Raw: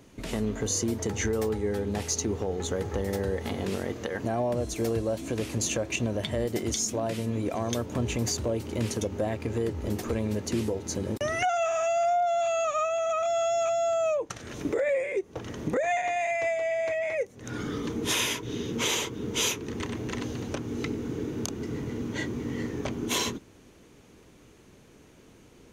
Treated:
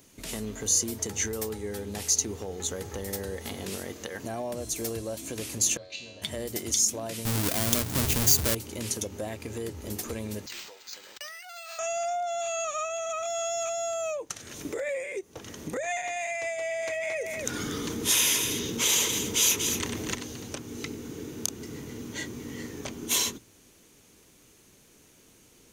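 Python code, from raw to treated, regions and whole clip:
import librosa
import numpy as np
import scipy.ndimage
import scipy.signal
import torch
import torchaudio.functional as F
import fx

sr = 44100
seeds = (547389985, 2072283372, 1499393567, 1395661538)

y = fx.chain(x, sr, fx.lowpass_res(hz=4100.0, q=8.2),
    fx.comb_fb(f0_hz=92.0, decay_s=0.79, harmonics='all', damping=0.0, mix_pct=90), at=(5.77, 6.22))
y = fx.chain(y, sr, fx.halfwave_hold(),
    fx.bass_treble(bass_db=5, treble_db=1), at=(7.25, 8.55))
y = fx.chain(y, sr, fx.highpass(hz=1400.0, slope=12),
    fx.over_compress(threshold_db=-39.0, ratio=-1.0),
    fx.resample_linear(factor=4), at=(10.46, 11.79))
y = fx.chain(y, sr, fx.echo_single(ms=237, db=-11.5),
    fx.env_flatten(amount_pct=70), at=(16.58, 20.15))
y = scipy.signal.lfilter([1.0, -0.8], [1.0], y)
y = fx.hum_notches(y, sr, base_hz=60, count=2)
y = F.gain(torch.from_numpy(y), 7.5).numpy()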